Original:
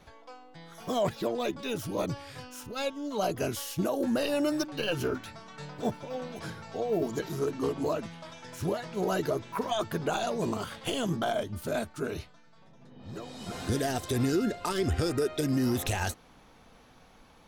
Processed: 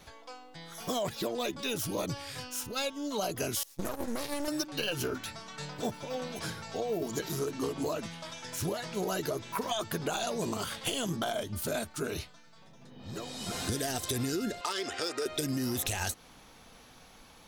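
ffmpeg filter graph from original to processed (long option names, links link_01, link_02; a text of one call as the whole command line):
ffmpeg -i in.wav -filter_complex "[0:a]asettb=1/sr,asplit=3[link_01][link_02][link_03];[link_01]atrim=end=3.634[link_04];[link_02]atrim=start=3.63:end=4.48,asetpts=PTS-STARTPTS,afade=type=in:duration=0.004:curve=qsin,afade=type=out:start_time=0.846:duration=0.004:curve=qsin,agate=range=-18dB:threshold=-31dB:ratio=16:release=100:detection=peak,equalizer=frequency=2900:width_type=o:width=0.27:gain=-8.5,aeval=exprs='max(val(0),0)':channel_layout=same[link_05];[link_03]atrim=start=4.476[link_06];[link_04][link_05]acrossfade=duration=0.004:curve1=hsin:curve2=qsin[link_07];[link_07][link_06]acrossfade=duration=0.004:curve1=qsin:curve2=hsin,asettb=1/sr,asplit=3[link_08][link_09][link_10];[link_08]atrim=end=14.614[link_11];[link_09]atrim=start=14.61:end=15.26,asetpts=PTS-STARTPTS,afade=type=in:duration=0.004:curve=qsin,afade=type=out:start_time=0.646:duration=0.004:curve=qsin,highpass=490,lowpass=6100,volume=25.5dB,asoftclip=hard,volume=-25.5dB[link_12];[link_10]atrim=start=15.256[link_13];[link_11][link_12]acrossfade=duration=0.004:curve1=hsin:curve2=qsin[link_14];[link_14][link_13]acrossfade=duration=0.004:curve1=qsin:curve2=hsin,highshelf=frequency=2900:gain=10,acompressor=threshold=-29dB:ratio=6" out.wav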